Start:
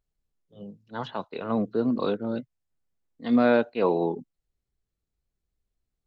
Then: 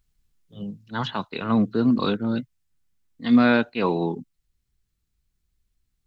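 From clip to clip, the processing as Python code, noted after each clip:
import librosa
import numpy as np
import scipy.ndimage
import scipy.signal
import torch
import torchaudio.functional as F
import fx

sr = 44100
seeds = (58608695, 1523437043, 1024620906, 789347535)

y = fx.peak_eq(x, sr, hz=550.0, db=-12.0, octaves=1.6)
y = fx.rider(y, sr, range_db=4, speed_s=2.0)
y = F.gain(torch.from_numpy(y), 8.0).numpy()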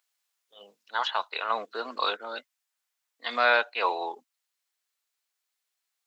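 y = scipy.signal.sosfilt(scipy.signal.butter(4, 610.0, 'highpass', fs=sr, output='sos'), x)
y = F.gain(torch.from_numpy(y), 2.0).numpy()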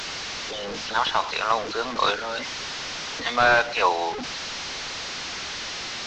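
y = fx.delta_mod(x, sr, bps=32000, step_db=-31.5)
y = F.gain(torch.from_numpy(y), 6.0).numpy()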